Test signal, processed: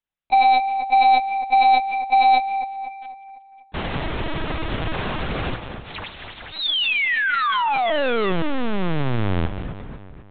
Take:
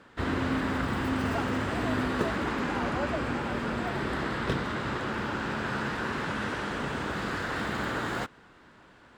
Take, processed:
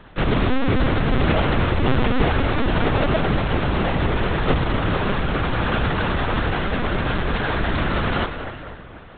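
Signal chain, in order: square wave that keeps the level; two-band feedback delay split 2.2 kHz, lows 248 ms, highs 183 ms, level -9 dB; LPC vocoder at 8 kHz pitch kept; trim +6 dB

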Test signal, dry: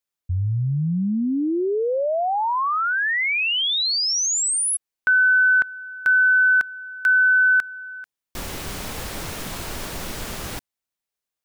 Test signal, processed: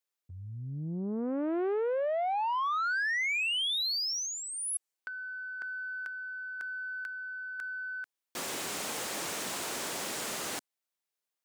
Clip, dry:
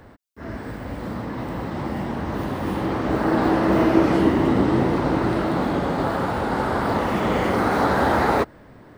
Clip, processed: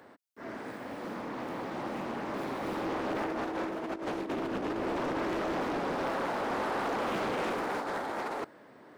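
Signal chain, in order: high-pass 280 Hz 12 dB/octave; dynamic bell 7.8 kHz, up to +6 dB, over -45 dBFS, Q 1.6; compressor with a negative ratio -23 dBFS, ratio -0.5; saturation -20 dBFS; loudspeaker Doppler distortion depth 0.64 ms; trim -6.5 dB

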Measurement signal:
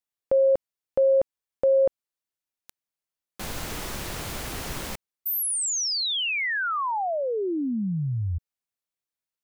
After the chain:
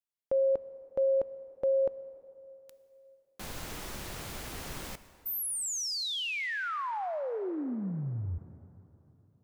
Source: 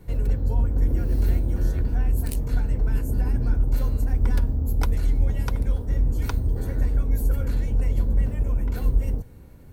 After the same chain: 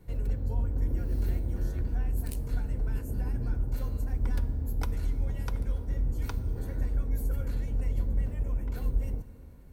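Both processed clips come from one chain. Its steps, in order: plate-style reverb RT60 3.3 s, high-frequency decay 0.65×, DRR 13.5 dB; trim -7.5 dB

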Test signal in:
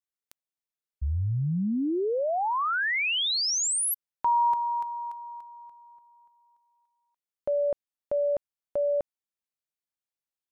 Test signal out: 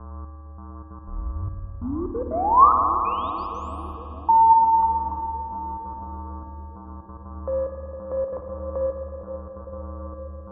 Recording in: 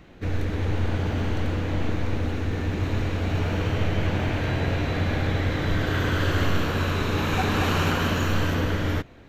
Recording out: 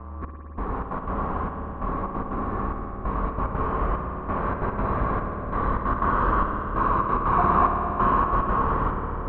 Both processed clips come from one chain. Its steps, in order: mains buzz 120 Hz, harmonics 14, -38 dBFS -9 dB/octave; in parallel at -9 dB: saturation -28 dBFS; on the sum: flange 0.84 Hz, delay 6.5 ms, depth 2.9 ms, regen -75%; frequency shift -45 Hz; resonant low-pass 1.1 kHz, resonance Q 9.9; trance gate "xxx....xxx.x.xx" 182 bpm -60 dB; on a send: bucket-brigade echo 456 ms, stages 2048, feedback 80%, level -10 dB; on the sum: spring tank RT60 3.5 s, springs 54 ms, chirp 25 ms, DRR 3 dB

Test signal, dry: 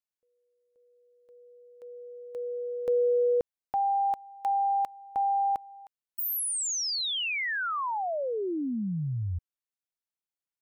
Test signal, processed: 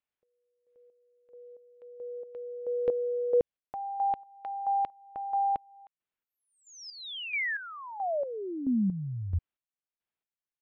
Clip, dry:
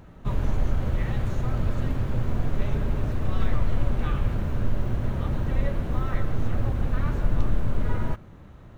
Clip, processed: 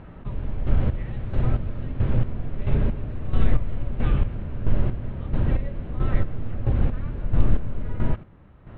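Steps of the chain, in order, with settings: low-pass 3.2 kHz 24 dB/octave; dynamic bell 1.2 kHz, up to -8 dB, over -43 dBFS, Q 0.74; square tremolo 1.5 Hz, depth 65%, duty 35%; trim +5 dB

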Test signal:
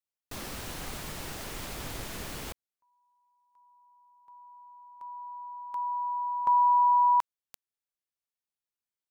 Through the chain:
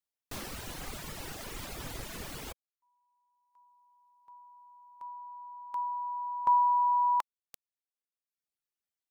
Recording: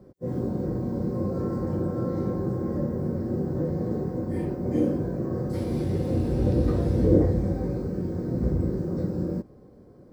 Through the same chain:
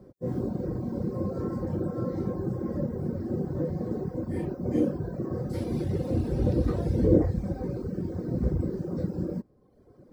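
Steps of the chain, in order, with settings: reverb removal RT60 1.1 s

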